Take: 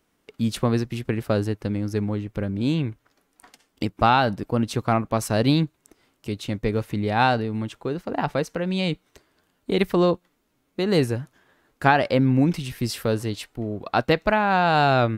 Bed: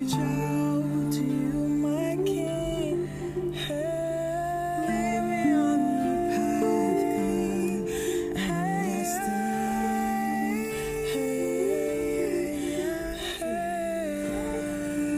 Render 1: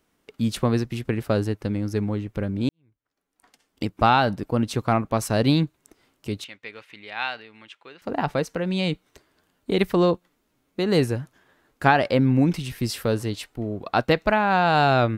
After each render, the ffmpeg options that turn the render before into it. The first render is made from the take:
-filter_complex "[0:a]asettb=1/sr,asplit=3[a][b][c];[a]atrim=end=6.444[d];[b]atrim=start=6.44:end=8.02,asetpts=PTS-STARTPTS,afade=t=in:d=0.004:c=qsin,afade=t=out:st=1.576:d=0.004:c=qsin,bandpass=f=2.5k:t=q:w=1.5[e];[c]atrim=start=8.016[f];[d][e]acrossfade=d=0.004:c1=hsin:c2=qsin[g];[g][f]acrossfade=d=0.004:c1=qsin:c2=hsin,asplit=2[h][i];[h]atrim=end=2.69,asetpts=PTS-STARTPTS,afade=t=out:st=2.686:d=0.004:c=hsin[j];[i]atrim=start=2.69,asetpts=PTS-STARTPTS,afade=t=in:d=1.24:c=qua[k];[j][k]concat=n=2:v=0:a=1"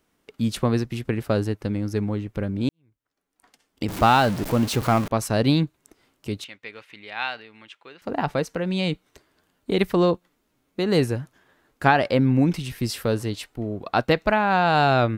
-filter_complex "[0:a]asettb=1/sr,asplit=3[a][b][c];[a]atrim=end=3.884[d];[b]atrim=start=3.88:end=5.08,asetpts=PTS-STARTPTS,afade=t=in:d=0.004:c=qsin,afade=t=out:st=1.196:d=0.004:c=qsin,aeval=exprs='val(0)+0.5*0.0473*sgn(val(0))':c=same[e];[c]atrim=start=5.076[f];[d][e]acrossfade=d=0.004:c1=hsin:c2=qsin[g];[g][f]acrossfade=d=0.004:c1=qsin:c2=hsin"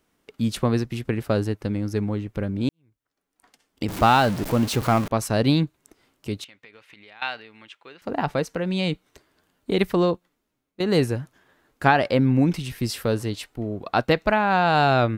-filter_complex "[0:a]asettb=1/sr,asplit=3[a][b][c];[a]atrim=end=6.444[d];[b]atrim=start=6.44:end=7.22,asetpts=PTS-STARTPTS,afade=t=in:d=0.004:c=qsin,afade=t=out:st=0.776:d=0.004:c=qsin,acompressor=threshold=-45dB:ratio=4:attack=3.2:release=140:knee=1:detection=peak[e];[c]atrim=start=7.216[f];[d][e]acrossfade=d=0.004:c1=hsin:c2=qsin[g];[g][f]acrossfade=d=0.004:c1=qsin:c2=hsin,asplit=2[h][i];[h]atrim=end=10.8,asetpts=PTS-STARTPTS,afade=t=out:st=9.89:d=0.91:silence=0.16788[j];[i]atrim=start=10.8,asetpts=PTS-STARTPTS,afade=t=in:d=0.004:c=hsin:silence=0.16788[k];[j][k]concat=n=2:v=0:a=1"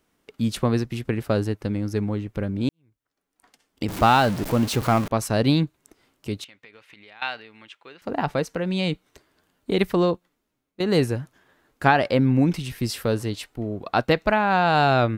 -af anull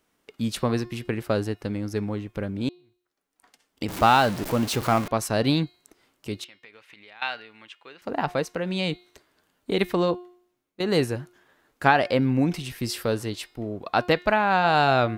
-af "lowshelf=f=270:g=-5.5,bandreject=f=357:t=h:w=4,bandreject=f=714:t=h:w=4,bandreject=f=1.071k:t=h:w=4,bandreject=f=1.428k:t=h:w=4,bandreject=f=1.785k:t=h:w=4,bandreject=f=2.142k:t=h:w=4,bandreject=f=2.499k:t=h:w=4,bandreject=f=2.856k:t=h:w=4,bandreject=f=3.213k:t=h:w=4,bandreject=f=3.57k:t=h:w=4,bandreject=f=3.927k:t=h:w=4,bandreject=f=4.284k:t=h:w=4,bandreject=f=4.641k:t=h:w=4,bandreject=f=4.998k:t=h:w=4,bandreject=f=5.355k:t=h:w=4"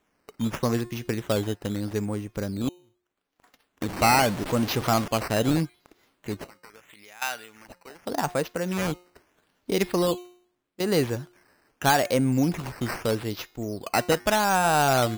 -af "acrusher=samples=9:mix=1:aa=0.000001:lfo=1:lforange=9:lforate=0.8,asoftclip=type=tanh:threshold=-11dB"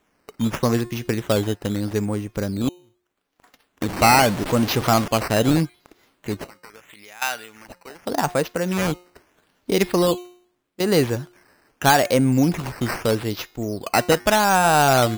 -af "volume=5dB"

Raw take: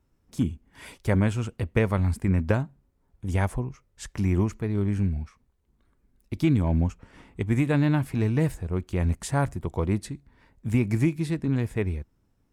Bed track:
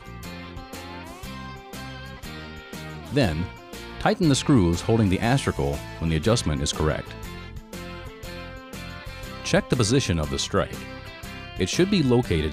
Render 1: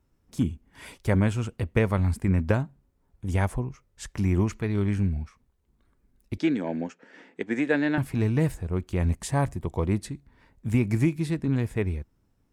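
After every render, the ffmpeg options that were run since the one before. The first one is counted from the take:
-filter_complex "[0:a]asettb=1/sr,asplit=3[a][b][c];[a]atrim=end=4.474[d];[b]atrim=start=4.47:end=4.96,asetpts=PTS-STARTPTS,afade=t=in:d=0.004:c=qsin,afade=t=out:st=0.486:d=0.004:c=qsin,equalizer=f=2.9k:t=o:w=2.6:g=6.5[e];[c]atrim=start=4.956[f];[d][e]acrossfade=d=0.004:c1=hsin:c2=qsin[g];[g][f]acrossfade=d=0.004:c1=qsin:c2=hsin,asettb=1/sr,asplit=3[h][i][j];[h]atrim=end=6.384[k];[i]atrim=start=6.38:end=7.98,asetpts=PTS-STARTPTS,afade=t=in:d=0.004:c=qsin,afade=t=out:st=1.596:d=0.004:c=qsin,highpass=f=230:w=0.5412,highpass=f=230:w=1.3066,equalizer=f=490:t=q:w=4:g=5,equalizer=f=1.1k:t=q:w=4:g=-8,equalizer=f=1.7k:t=q:w=4:g=9,lowpass=f=7.1k:w=0.5412,lowpass=f=7.1k:w=1.3066[l];[j]atrim=start=7.976[m];[k][l]acrossfade=d=0.004:c1=hsin:c2=qsin[n];[n][m]acrossfade=d=0.004:c1=qsin:c2=hsin,asettb=1/sr,asplit=3[o][p][q];[o]atrim=end=9.094[r];[p]atrim=start=9.09:end=9.84,asetpts=PTS-STARTPTS,afade=t=in:d=0.004:c=qsin,afade=t=out:st=0.746:d=0.004:c=qsin,bandreject=f=1.4k:w=8.4[s];[q]atrim=start=9.836[t];[r][s]acrossfade=d=0.004:c1=hsin:c2=qsin[u];[u][t]acrossfade=d=0.004:c1=qsin:c2=hsin"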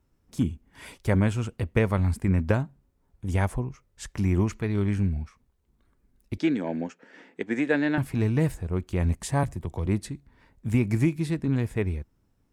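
-filter_complex "[0:a]asettb=1/sr,asplit=3[a][b][c];[a]atrim=end=9.434[d];[b]atrim=start=9.43:end=9.86,asetpts=PTS-STARTPTS,afade=t=in:d=0.004:c=qsin,afade=t=out:st=0.426:d=0.004:c=qsin,acrossover=split=150|3000[e][f][g];[f]acompressor=threshold=-32dB:ratio=6:attack=3.2:release=140:knee=2.83:detection=peak[h];[e][h][g]amix=inputs=3:normalize=0[i];[c]atrim=start=9.856[j];[d][i]acrossfade=d=0.004:c1=hsin:c2=qsin[k];[k][j]acrossfade=d=0.004:c1=qsin:c2=hsin"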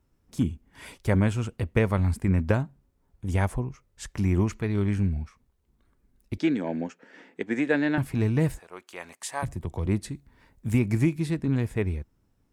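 -filter_complex "[0:a]asplit=3[a][b][c];[a]afade=t=out:st=8.58:d=0.02[d];[b]highpass=790,afade=t=in:st=8.58:d=0.02,afade=t=out:st=9.42:d=0.02[e];[c]afade=t=in:st=9.42:d=0.02[f];[d][e][f]amix=inputs=3:normalize=0,asettb=1/sr,asplit=3[g][h][i];[g]atrim=end=10.084[j];[h]atrim=start=10.08:end=10.79,asetpts=PTS-STARTPTS,afade=t=in:d=0.004:c=qsin,afade=t=out:st=0.706:d=0.004:c=qsin,highshelf=f=6.8k:g=6.5[k];[i]atrim=start=10.786[l];[j][k]acrossfade=d=0.004:c1=hsin:c2=qsin[m];[m][l]acrossfade=d=0.004:c1=qsin:c2=hsin"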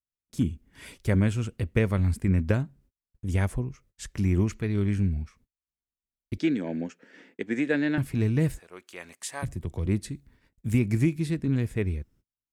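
-af "agate=range=-35dB:threshold=-56dB:ratio=16:detection=peak,equalizer=f=880:w=1.3:g=-8"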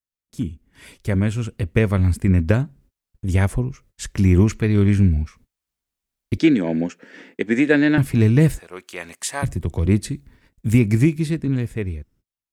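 -af "dynaudnorm=f=130:g=21:m=11dB"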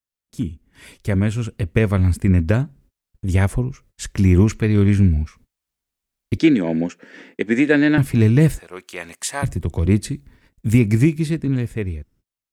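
-af "volume=1dB,alimiter=limit=-3dB:level=0:latency=1"

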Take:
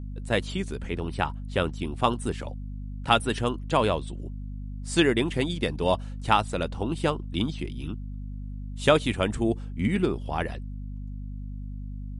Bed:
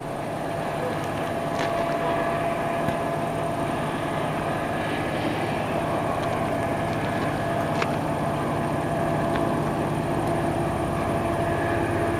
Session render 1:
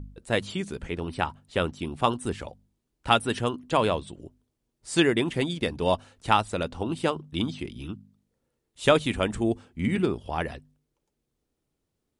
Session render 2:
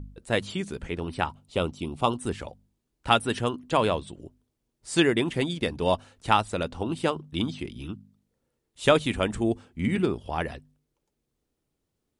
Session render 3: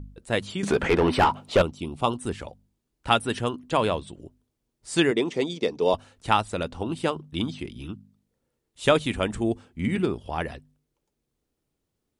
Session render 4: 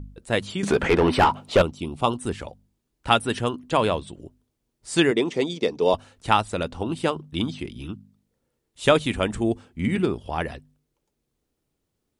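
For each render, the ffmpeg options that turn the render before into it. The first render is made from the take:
-af "bandreject=f=50:t=h:w=4,bandreject=f=100:t=h:w=4,bandreject=f=150:t=h:w=4,bandreject=f=200:t=h:w=4,bandreject=f=250:t=h:w=4"
-filter_complex "[0:a]asettb=1/sr,asplit=3[a][b][c];[a]atrim=end=1.294[d];[b]atrim=start=1.29:end=2.17,asetpts=PTS-STARTPTS,afade=t=in:d=0.004:c=qsin,afade=t=out:st=0.876:d=0.004:c=qsin,equalizer=f=1.7k:w=4.1:g=-15[e];[c]atrim=start=2.166[f];[d][e]acrossfade=d=0.004:c1=hsin:c2=qsin[g];[g][f]acrossfade=d=0.004:c1=qsin:c2=hsin"
-filter_complex "[0:a]asettb=1/sr,asplit=3[a][b][c];[a]atrim=end=0.634[d];[b]atrim=start=0.63:end=1.62,asetpts=PTS-STARTPTS,afade=t=in:d=0.004:c=qsin,afade=t=out:st=0.986:d=0.004:c=qsin,asplit=2[e][f];[f]highpass=f=720:p=1,volume=30dB,asoftclip=type=tanh:threshold=-8dB[g];[e][g]amix=inputs=2:normalize=0,lowpass=f=1.5k:p=1,volume=-6dB[h];[c]atrim=start=1.616[i];[d][h]acrossfade=d=0.004:c1=hsin:c2=qsin[j];[j][i]acrossfade=d=0.004:c1=qsin:c2=hsin,asettb=1/sr,asplit=3[k][l][m];[k]atrim=end=5.114[n];[l]atrim=start=5.11:end=5.94,asetpts=PTS-STARTPTS,afade=t=in:d=0.004:c=qsin,afade=t=out:st=0.826:d=0.004:c=qsin,highpass=210,equalizer=f=440:t=q:w=4:g=8,equalizer=f=1.6k:t=q:w=4:g=-9,equalizer=f=2.9k:t=q:w=4:g=-4,equalizer=f=5.8k:t=q:w=4:g=8,lowpass=f=7.8k:w=0.5412,lowpass=f=7.8k:w=1.3066[o];[m]atrim=start=5.936[p];[n][o]acrossfade=d=0.004:c1=hsin:c2=qsin[q];[q][p]acrossfade=d=0.004:c1=qsin:c2=hsin"
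-af "volume=2dB"

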